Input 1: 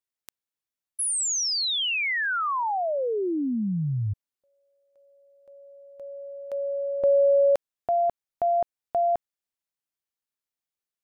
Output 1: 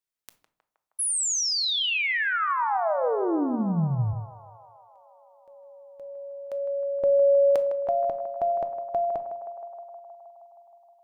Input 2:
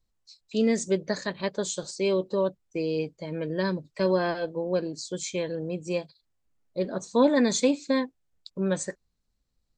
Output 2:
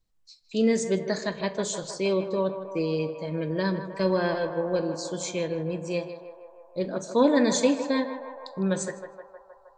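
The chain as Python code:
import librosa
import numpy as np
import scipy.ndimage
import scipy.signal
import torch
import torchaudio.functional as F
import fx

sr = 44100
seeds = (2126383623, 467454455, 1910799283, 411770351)

y = fx.echo_banded(x, sr, ms=157, feedback_pct=82, hz=870.0, wet_db=-8.0)
y = fx.room_shoebox(y, sr, seeds[0], volume_m3=490.0, walls='furnished', distance_m=0.6)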